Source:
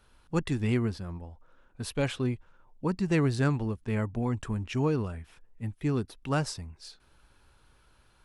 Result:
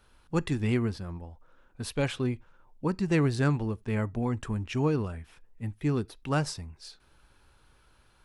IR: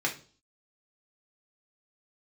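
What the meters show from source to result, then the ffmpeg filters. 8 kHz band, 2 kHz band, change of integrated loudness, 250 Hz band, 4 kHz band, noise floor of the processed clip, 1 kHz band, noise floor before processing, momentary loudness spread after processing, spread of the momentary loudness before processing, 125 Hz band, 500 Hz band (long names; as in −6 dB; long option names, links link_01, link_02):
0.0 dB, +1.0 dB, +0.5 dB, +0.5 dB, +0.5 dB, −62 dBFS, +0.5 dB, −63 dBFS, 14 LU, 14 LU, +0.5 dB, +0.5 dB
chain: -filter_complex "[0:a]asplit=2[link_01][link_02];[1:a]atrim=start_sample=2205,atrim=end_sample=4410[link_03];[link_02][link_03]afir=irnorm=-1:irlink=0,volume=-26dB[link_04];[link_01][link_04]amix=inputs=2:normalize=0"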